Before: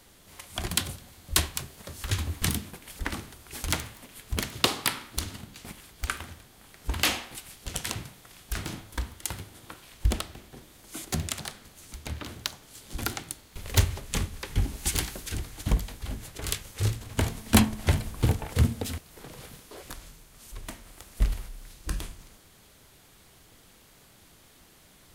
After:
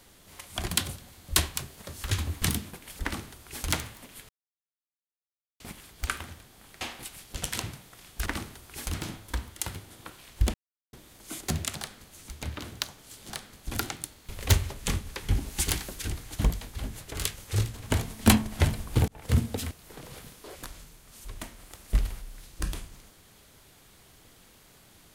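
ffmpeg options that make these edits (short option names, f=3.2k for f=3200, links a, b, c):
-filter_complex "[0:a]asplit=11[a][b][c][d][e][f][g][h][i][j][k];[a]atrim=end=4.29,asetpts=PTS-STARTPTS,afade=t=out:st=4.286:d=0.004:c=hsin[l];[b]atrim=start=4.29:end=5.6,asetpts=PTS-STARTPTS,volume=0[m];[c]atrim=start=5.6:end=6.812,asetpts=PTS-STARTPTS,afade=t=in:d=0.004:c=hsin[n];[d]atrim=start=7.128:end=8.582[o];[e]atrim=start=3.028:end=3.712[p];[f]atrim=start=8.578:end=10.18,asetpts=PTS-STARTPTS,afade=t=out:st=1.598:d=0.004:c=hsin[q];[g]atrim=start=10.18:end=10.57,asetpts=PTS-STARTPTS,volume=0[r];[h]atrim=start=10.57:end=12.942,asetpts=PTS-STARTPTS,afade=t=in:d=0.004:c=hsin[s];[i]atrim=start=11.418:end=11.792[t];[j]atrim=start=12.938:end=18.35,asetpts=PTS-STARTPTS,afade=t=out:st=5.408:d=0.004:c=hsin[u];[k]atrim=start=18.35,asetpts=PTS-STARTPTS,afade=t=in:d=0.31[v];[l][m][n]concat=n=3:v=0:a=1[w];[w][o]acrossfade=d=0.004:c1=hsin:c2=hsin[x];[x][p]acrossfade=d=0.004:c1=hsin:c2=hsin[y];[q][r][s]concat=n=3:v=0:a=1[z];[y][z]acrossfade=d=0.004:c1=hsin:c2=hsin[aa];[aa][t]acrossfade=d=0.004:c1=hsin:c2=hsin[ab];[u][v]concat=n=2:v=0:a=1[ac];[ab][ac]acrossfade=d=0.004:c1=hsin:c2=hsin"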